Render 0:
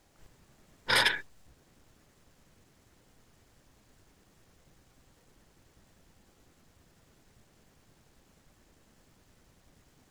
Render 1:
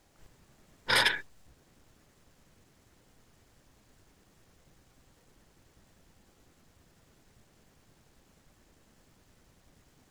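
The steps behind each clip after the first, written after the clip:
no processing that can be heard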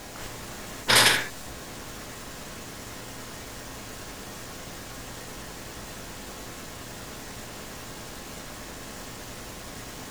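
convolution reverb, pre-delay 3 ms, DRR 3 dB
every bin compressed towards the loudest bin 2 to 1
level +6.5 dB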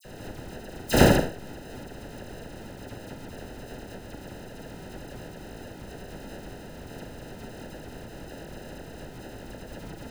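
in parallel at −7 dB: dead-zone distortion −35 dBFS
on the sum: decimation without filtering 39×
all-pass dispersion lows, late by 48 ms, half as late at 2,700 Hz
level −1.5 dB

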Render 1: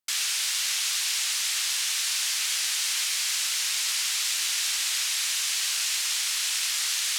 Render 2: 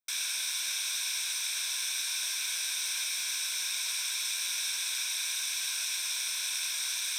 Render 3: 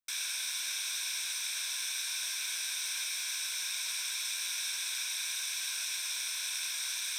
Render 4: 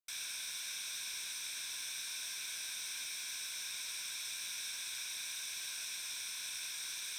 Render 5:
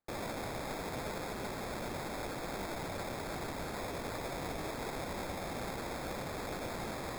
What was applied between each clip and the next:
EQ curve with evenly spaced ripples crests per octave 1.6, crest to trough 13 dB; level −8 dB
parametric band 1,700 Hz +2 dB; level −3 dB
tube saturation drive 26 dB, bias 0.25; level −5.5 dB
decimation without filtering 15×; level +3 dB

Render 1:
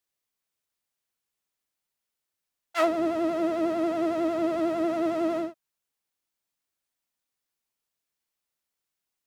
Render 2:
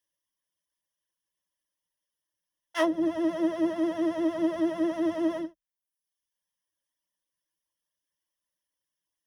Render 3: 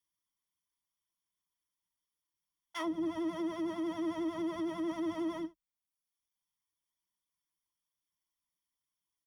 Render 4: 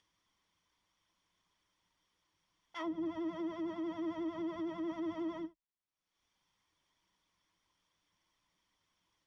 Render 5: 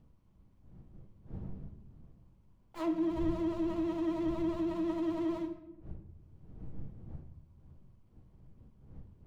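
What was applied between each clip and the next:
reverb reduction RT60 0.88 s; EQ curve with evenly spaced ripples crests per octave 1.2, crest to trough 13 dB; level −2.5 dB
comb filter 0.9 ms, depth 64%; brickwall limiter −23 dBFS, peak gain reduction 8.5 dB; level −5 dB
upward compression, threshold −52 dBFS; high-frequency loss of the air 130 metres; level −3 dB
running median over 25 samples; wind on the microphone 130 Hz −55 dBFS; rectangular room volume 330 cubic metres, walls mixed, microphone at 0.61 metres; level +4.5 dB

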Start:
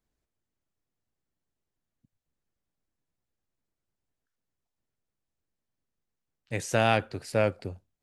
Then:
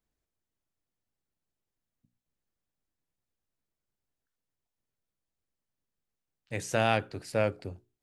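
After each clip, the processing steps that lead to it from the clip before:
mains-hum notches 60/120/180/240/300/360/420 Hz
level −2.5 dB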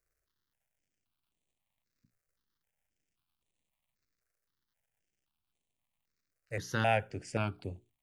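surface crackle 220 per second −67 dBFS
step-sequenced phaser 3.8 Hz 910–5,100 Hz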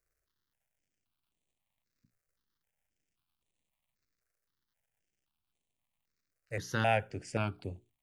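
no processing that can be heard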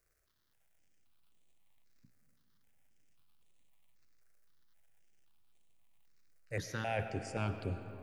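reversed playback
downward compressor 8 to 1, threshold −39 dBFS, peak gain reduction 15.5 dB
reversed playback
convolution reverb RT60 3.5 s, pre-delay 65 ms, DRR 8.5 dB
level +6 dB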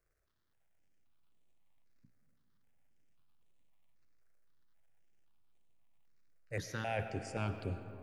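one half of a high-frequency compander decoder only
level −1 dB

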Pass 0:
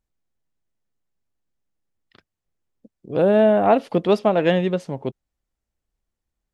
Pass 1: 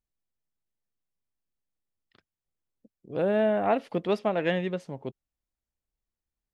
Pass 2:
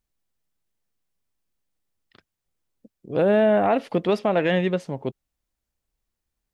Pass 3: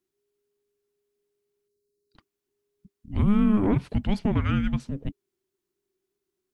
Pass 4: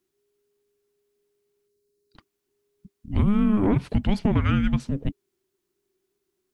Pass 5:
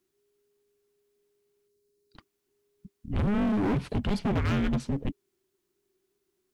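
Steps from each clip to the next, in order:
dynamic equaliser 2,000 Hz, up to +6 dB, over −38 dBFS, Q 1.6; level −9 dB
brickwall limiter −19 dBFS, peak gain reduction 5 dB; level +7.5 dB
frequency shifter −410 Hz; dynamic equaliser 1,900 Hz, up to −4 dB, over −42 dBFS, Q 0.83; gain on a spectral selection 0:01.68–0:02.16, 490–3,800 Hz −24 dB; level −2 dB
downward compressor, threshold −21 dBFS, peak gain reduction 6 dB; level +5 dB
gain into a clipping stage and back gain 23.5 dB

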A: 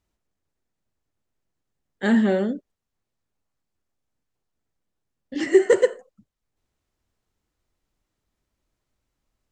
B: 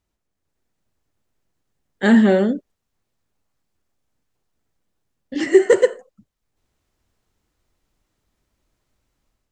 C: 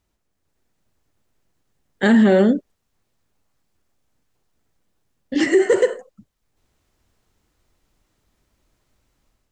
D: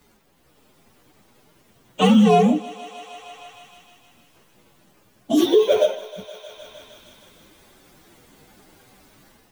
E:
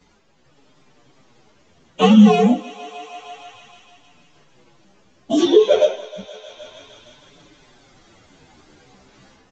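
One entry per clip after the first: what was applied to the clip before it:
automatic gain control gain up to 6.5 dB
boost into a limiter +10.5 dB; level −6 dB
partials spread apart or drawn together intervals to 129%; feedback echo with a high-pass in the loop 155 ms, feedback 69%, high-pass 480 Hz, level −19 dB; multiband upward and downward compressor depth 70%; level +3 dB
multi-voice chorus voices 2, 0.27 Hz, delay 11 ms, depth 4.3 ms; downsampling to 16,000 Hz; level +5 dB

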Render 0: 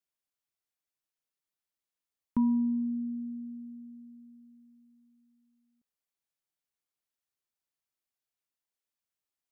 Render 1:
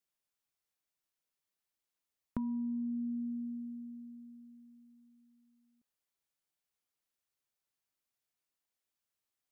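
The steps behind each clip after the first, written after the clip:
downward compressor 10 to 1, threshold −35 dBFS, peak gain reduction 12 dB
level +1 dB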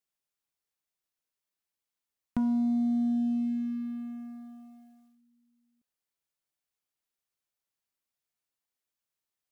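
leveller curve on the samples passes 2
level +3 dB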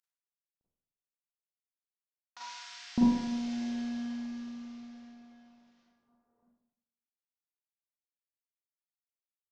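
variable-slope delta modulation 32 kbit/s
multiband delay without the direct sound highs, lows 610 ms, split 1,100 Hz
four-comb reverb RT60 0.85 s, combs from 33 ms, DRR −7 dB

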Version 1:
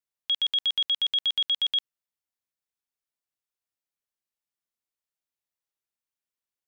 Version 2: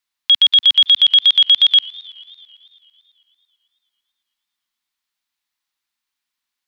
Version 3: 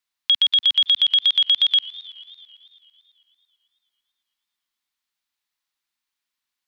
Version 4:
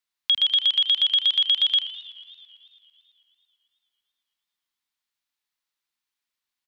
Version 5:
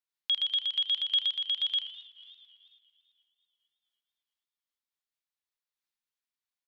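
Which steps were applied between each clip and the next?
octave-band graphic EQ 125/250/500/1,000/2,000/4,000 Hz −9/+4/−10/+6/+5/+8 dB; feedback echo with a swinging delay time 111 ms, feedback 77%, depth 167 cents, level −23.5 dB; level +6.5 dB
downward compressor 4 to 1, threshold −12 dBFS, peak gain reduction 4.5 dB; level −2.5 dB
echo with shifted repeats 80 ms, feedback 42%, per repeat −120 Hz, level −13.5 dB; level −3 dB
on a send at −21 dB: convolution reverb RT60 2.6 s, pre-delay 3 ms; on the sum: amplitude modulation by smooth noise, depth 65%; level −5.5 dB

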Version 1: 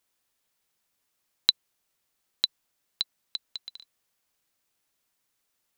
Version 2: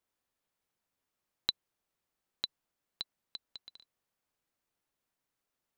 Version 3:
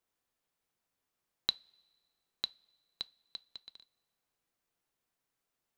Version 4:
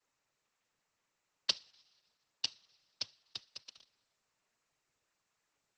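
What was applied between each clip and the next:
high-shelf EQ 2,000 Hz −9.5 dB; level −3 dB
coupled-rooms reverb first 0.21 s, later 1.6 s, from −21 dB, DRR 15 dB
cochlear-implant simulation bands 12; level +3.5 dB; Opus 12 kbit/s 48,000 Hz

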